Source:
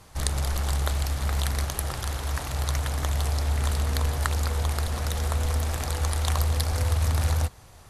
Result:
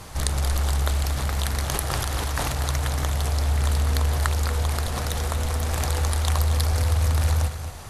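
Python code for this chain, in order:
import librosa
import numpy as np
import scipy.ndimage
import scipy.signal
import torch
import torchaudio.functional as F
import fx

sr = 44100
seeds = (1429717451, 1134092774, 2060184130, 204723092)

p1 = fx.over_compress(x, sr, threshold_db=-35.0, ratio=-1.0)
p2 = x + F.gain(torch.from_numpy(p1), -1.5).numpy()
y = p2 + 10.0 ** (-10.5 / 20.0) * np.pad(p2, (int(232 * sr / 1000.0), 0))[:len(p2)]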